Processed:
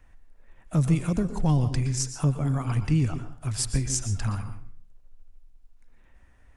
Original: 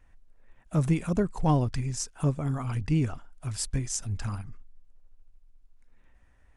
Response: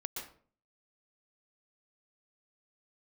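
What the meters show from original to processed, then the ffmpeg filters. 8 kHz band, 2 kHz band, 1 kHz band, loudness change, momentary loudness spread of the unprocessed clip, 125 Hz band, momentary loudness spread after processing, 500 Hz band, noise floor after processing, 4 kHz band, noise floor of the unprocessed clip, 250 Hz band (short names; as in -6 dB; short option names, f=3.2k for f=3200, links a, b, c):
+4.0 dB, +2.0 dB, -2.0 dB, +3.0 dB, 11 LU, +3.5 dB, 8 LU, -2.0 dB, -55 dBFS, +4.0 dB, -59 dBFS, +2.0 dB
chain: -filter_complex "[0:a]acrossover=split=210|3000[a][b][c];[b]acompressor=threshold=-34dB:ratio=6[d];[a][d][c]amix=inputs=3:normalize=0,asplit=2[e][f];[1:a]atrim=start_sample=2205[g];[f][g]afir=irnorm=-1:irlink=0,volume=-2dB[h];[e][h]amix=inputs=2:normalize=0"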